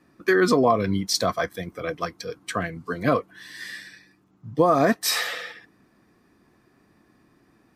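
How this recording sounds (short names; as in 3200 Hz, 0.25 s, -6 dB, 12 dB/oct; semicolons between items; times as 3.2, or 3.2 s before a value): noise floor -62 dBFS; spectral tilt -4.0 dB/oct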